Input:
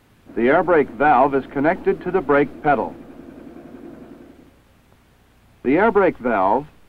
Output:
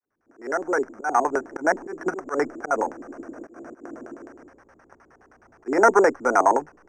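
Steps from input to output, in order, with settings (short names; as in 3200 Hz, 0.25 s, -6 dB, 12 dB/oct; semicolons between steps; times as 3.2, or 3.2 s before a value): opening faded in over 2.13 s; in parallel at -2.5 dB: compressor, threshold -30 dBFS, peak gain reduction 18 dB; on the sum: auto swell 0.152 s; LFO low-pass square 9.6 Hz 340–1600 Hz; three-band isolator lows -17 dB, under 380 Hz, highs -14 dB, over 2400 Hz; sample-and-hold 6×; air absorption 130 m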